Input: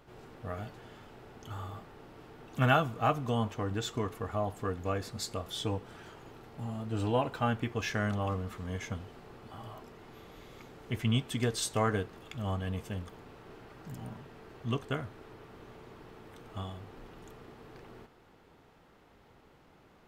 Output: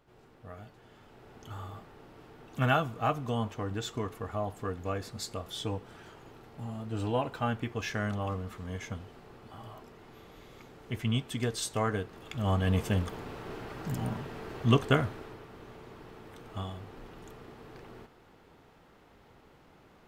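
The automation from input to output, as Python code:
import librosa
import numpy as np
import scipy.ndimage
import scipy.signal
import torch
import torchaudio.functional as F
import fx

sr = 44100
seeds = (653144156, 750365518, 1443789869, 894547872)

y = fx.gain(x, sr, db=fx.line((0.74, -7.5), (1.36, -1.0), (12.0, -1.0), (12.79, 9.5), (15.04, 9.5), (15.46, 2.0)))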